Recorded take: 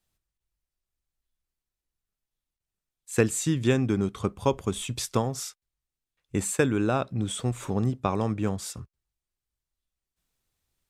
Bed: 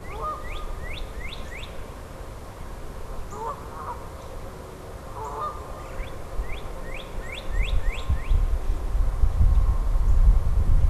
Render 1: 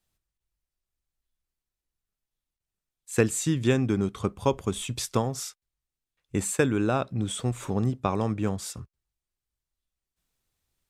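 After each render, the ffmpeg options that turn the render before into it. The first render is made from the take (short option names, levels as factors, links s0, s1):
-af anull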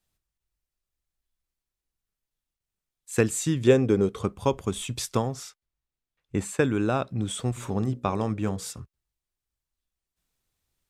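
-filter_complex "[0:a]asettb=1/sr,asplit=3[s0][s1][s2];[s0]atrim=end=3.674[s3];[s1]atrim=start=3.67:end=4.23,asetpts=PTS-STARTPTS,afade=t=in:d=0.004:c=qsin,afade=t=out:st=0.556:d=0.004:c=qsin,equalizer=f=470:t=o:w=0.52:g=14[s4];[s2]atrim=start=4.226[s5];[s3][s4]acrossfade=d=0.004:c1=hsin:c2=qsin[s6];[s6][s5]acrossfade=d=0.004:c1=qsin:c2=hsin,asettb=1/sr,asplit=3[s7][s8][s9];[s7]atrim=end=5.334[s10];[s8]atrim=start=5.33:end=6.64,asetpts=PTS-STARTPTS,afade=t=in:d=0.004:c=qsin,afade=t=out:st=1.306:d=0.004:c=qsin,aemphasis=mode=reproduction:type=cd[s11];[s9]atrim=start=6.636[s12];[s10][s11]acrossfade=d=0.004:c1=hsin:c2=qsin[s13];[s13][s12]acrossfade=d=0.004:c1=qsin:c2=hsin,asplit=3[s14][s15][s16];[s14]afade=t=out:st=7.56:d=0.02[s17];[s15]bandreject=f=60:t=h:w=6,bandreject=f=120:t=h:w=6,bandreject=f=180:t=h:w=6,bandreject=f=240:t=h:w=6,bandreject=f=300:t=h:w=6,bandreject=f=360:t=h:w=6,bandreject=f=420:t=h:w=6,bandreject=f=480:t=h:w=6,bandreject=f=540:t=h:w=6,afade=t=in:st=7.56:d=0.02,afade=t=out:st=8.78:d=0.02[s18];[s16]afade=t=in:st=8.78:d=0.02[s19];[s17][s18][s19]amix=inputs=3:normalize=0"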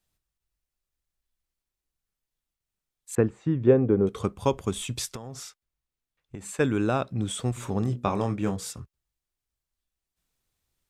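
-filter_complex "[0:a]asettb=1/sr,asplit=3[s0][s1][s2];[s0]atrim=end=3.154[s3];[s1]atrim=start=3.15:end=4.07,asetpts=PTS-STARTPTS,afade=t=in:d=0.004:c=qsin,afade=t=out:st=0.916:d=0.004:c=qsin,lowpass=1200[s4];[s2]atrim=start=4.066[s5];[s3][s4]acrossfade=d=0.004:c1=hsin:c2=qsin[s6];[s6][s5]acrossfade=d=0.004:c1=qsin:c2=hsin,asplit=3[s7][s8][s9];[s7]afade=t=out:st=5.13:d=0.02[s10];[s8]acompressor=threshold=0.0224:ratio=16:attack=3.2:release=140:knee=1:detection=peak,afade=t=in:st=5.13:d=0.02,afade=t=out:st=6.59:d=0.02[s11];[s9]afade=t=in:st=6.59:d=0.02[s12];[s10][s11][s12]amix=inputs=3:normalize=0,asettb=1/sr,asplit=3[s13][s14][s15];[s13]atrim=end=7.834[s16];[s14]atrim=start=7.83:end=8.54,asetpts=PTS-STARTPTS,afade=t=in:d=0.004:c=qsin,afade=t=out:st=0.706:d=0.004:c=qsin,asplit=2[s17][s18];[s18]adelay=25,volume=0.376[s19];[s17][s19]amix=inputs=2:normalize=0,atrim=end_sample=31311[s20];[s15]atrim=start=8.536[s21];[s16][s20]acrossfade=d=0.004:c1=hsin:c2=qsin[s22];[s22][s21]acrossfade=d=0.004:c1=qsin:c2=hsin"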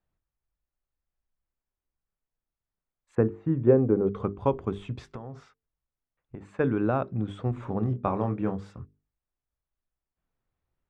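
-af "lowpass=1500,bandreject=f=50:t=h:w=6,bandreject=f=100:t=h:w=6,bandreject=f=150:t=h:w=6,bandreject=f=200:t=h:w=6,bandreject=f=250:t=h:w=6,bandreject=f=300:t=h:w=6,bandreject=f=350:t=h:w=6,bandreject=f=400:t=h:w=6,bandreject=f=450:t=h:w=6"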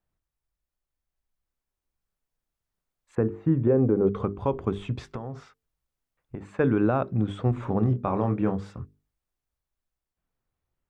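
-af "alimiter=limit=0.141:level=0:latency=1:release=132,dynaudnorm=f=270:g=13:m=1.68"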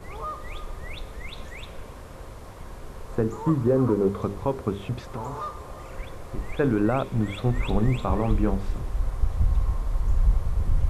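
-filter_complex "[1:a]volume=0.708[s0];[0:a][s0]amix=inputs=2:normalize=0"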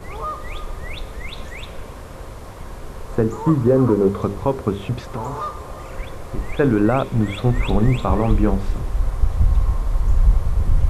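-af "volume=2,alimiter=limit=0.708:level=0:latency=1"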